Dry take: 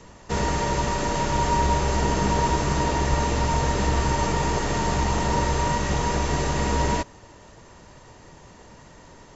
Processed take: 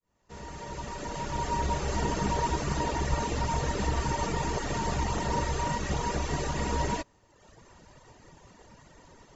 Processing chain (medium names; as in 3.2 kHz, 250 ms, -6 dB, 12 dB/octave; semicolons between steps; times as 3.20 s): fade-in on the opening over 2.01 s; reverb removal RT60 0.93 s; trim -4 dB